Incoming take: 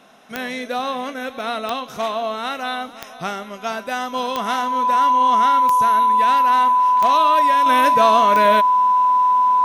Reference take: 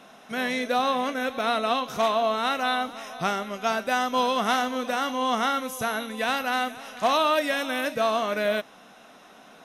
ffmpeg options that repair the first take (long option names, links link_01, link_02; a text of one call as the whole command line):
ffmpeg -i in.wav -af "adeclick=threshold=4,bandreject=frequency=1000:width=30,asetnsamples=nb_out_samples=441:pad=0,asendcmd='7.66 volume volume -7dB',volume=0dB" out.wav